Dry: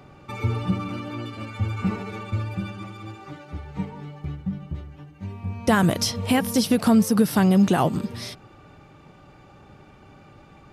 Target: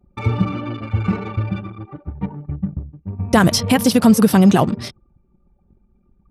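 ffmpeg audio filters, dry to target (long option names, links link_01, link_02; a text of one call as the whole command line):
ffmpeg -i in.wav -af "anlmdn=2.51,atempo=1.7,volume=6.5dB" out.wav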